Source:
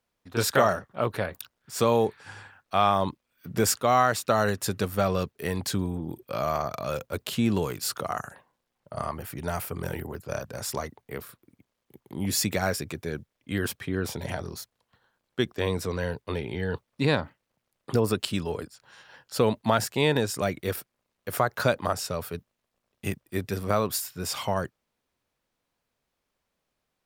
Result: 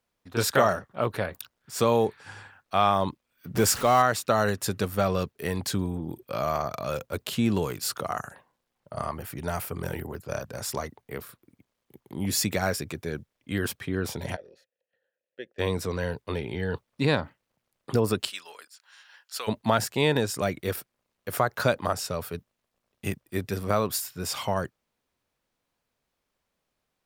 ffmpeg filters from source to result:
ffmpeg -i in.wav -filter_complex "[0:a]asettb=1/sr,asplit=3[link_01][link_02][link_03];[link_01]atrim=end=3.554[link_04];[link_02]atrim=start=3.55:end=4.02,asetpts=PTS-STARTPTS,afade=type=in:duration=0.004:curve=qsin,afade=type=out:start_time=0.466:duration=0.004:curve=qsin,aeval=exprs='val(0)+0.5*0.0299*sgn(val(0))':channel_layout=same[link_05];[link_03]atrim=start=4.016[link_06];[link_04][link_05]acrossfade=duration=0.004:curve1=hsin:curve2=qsin[link_07];[link_07][link_06]acrossfade=duration=0.004:curve1=qsin:curve2=hsin,asplit=3[link_08][link_09][link_10];[link_08]afade=type=out:start_time=14.35:duration=0.02[link_11];[link_09]asplit=3[link_12][link_13][link_14];[link_12]bandpass=frequency=530:width_type=q:width=8,volume=0dB[link_15];[link_13]bandpass=frequency=1840:width_type=q:width=8,volume=-6dB[link_16];[link_14]bandpass=frequency=2480:width_type=q:width=8,volume=-9dB[link_17];[link_15][link_16][link_17]amix=inputs=3:normalize=0,afade=type=in:start_time=14.35:duration=0.02,afade=type=out:start_time=15.58:duration=0.02[link_18];[link_10]afade=type=in:start_time=15.58:duration=0.02[link_19];[link_11][link_18][link_19]amix=inputs=3:normalize=0,asplit=3[link_20][link_21][link_22];[link_20]afade=type=out:start_time=18.29:duration=0.02[link_23];[link_21]highpass=1400,afade=type=in:start_time=18.29:duration=0.02,afade=type=out:start_time=19.47:duration=0.02[link_24];[link_22]afade=type=in:start_time=19.47:duration=0.02[link_25];[link_23][link_24][link_25]amix=inputs=3:normalize=0" out.wav

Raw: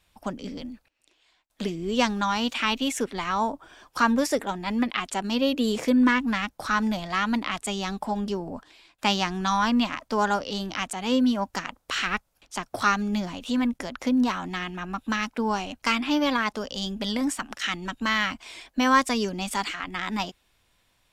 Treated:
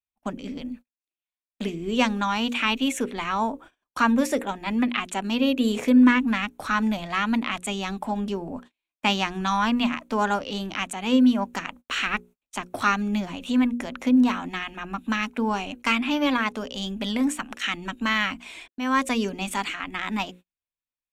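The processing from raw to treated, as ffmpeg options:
ffmpeg -i in.wav -filter_complex "[0:a]asplit=2[link_01][link_02];[link_01]atrim=end=18.68,asetpts=PTS-STARTPTS,afade=type=out:start_time=18.676:duration=0.004:curve=hsin[link_03];[link_02]atrim=start=18.68,asetpts=PTS-STARTPTS,afade=type=in:duration=0.42[link_04];[link_03][link_04]concat=n=2:v=0:a=1,bandreject=frequency=60:width_type=h:width=6,bandreject=frequency=120:width_type=h:width=6,bandreject=frequency=180:width_type=h:width=6,bandreject=frequency=240:width_type=h:width=6,bandreject=frequency=300:width_type=h:width=6,bandreject=frequency=360:width_type=h:width=6,bandreject=frequency=420:width_type=h:width=6,bandreject=frequency=480:width_type=h:width=6,bandreject=frequency=540:width_type=h:width=6,agate=range=-35dB:threshold=-45dB:ratio=16:detection=peak,equalizer=frequency=250:width_type=o:width=0.33:gain=5,equalizer=frequency=2500:width_type=o:width=0.33:gain=5,equalizer=frequency=5000:width_type=o:width=0.33:gain=-10" out.wav

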